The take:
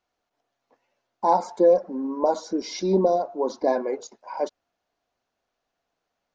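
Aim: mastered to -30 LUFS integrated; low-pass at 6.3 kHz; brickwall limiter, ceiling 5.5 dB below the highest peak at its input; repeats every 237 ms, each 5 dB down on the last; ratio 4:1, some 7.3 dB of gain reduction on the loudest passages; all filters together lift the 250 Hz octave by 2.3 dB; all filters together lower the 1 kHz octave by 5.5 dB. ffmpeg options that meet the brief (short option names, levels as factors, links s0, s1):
-af "lowpass=6300,equalizer=f=250:t=o:g=4,equalizer=f=1000:t=o:g=-8,acompressor=threshold=0.0794:ratio=4,alimiter=limit=0.112:level=0:latency=1,aecho=1:1:237|474|711|948|1185|1422|1659:0.562|0.315|0.176|0.0988|0.0553|0.031|0.0173,volume=0.841"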